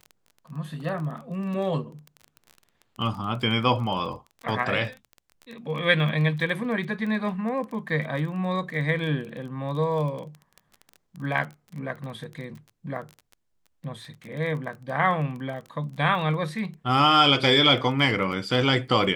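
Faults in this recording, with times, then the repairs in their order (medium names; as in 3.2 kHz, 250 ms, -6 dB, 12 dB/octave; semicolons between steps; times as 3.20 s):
crackle 20 per s -33 dBFS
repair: de-click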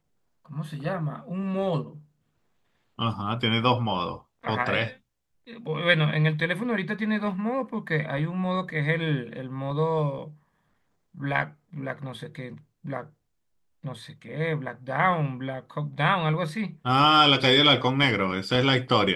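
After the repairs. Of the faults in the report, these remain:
nothing left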